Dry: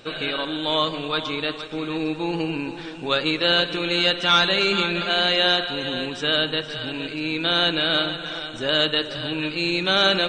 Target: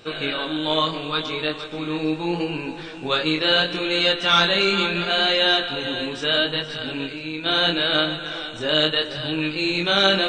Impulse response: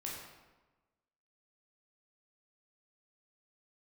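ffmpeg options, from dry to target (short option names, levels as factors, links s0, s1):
-filter_complex "[0:a]asettb=1/sr,asplit=3[s0][s1][s2];[s0]atrim=end=7.034[s3];[s1]atrim=start=7.03:end=7.46,asetpts=PTS-STARTPTS,afade=t=in:d=0.004:c=qsin,afade=t=out:st=0.426:d=0.004:c=qsin,acompressor=threshold=0.0398:ratio=6[s4];[s2]atrim=start=7.456[s5];[s3][s4]acrossfade=d=0.004:c1=hsin:c2=qsin[s6];[s6][s5]acrossfade=d=0.004:c1=qsin:c2=hsin,flanger=delay=19:depth=7.1:speed=0.74,volume=1.5"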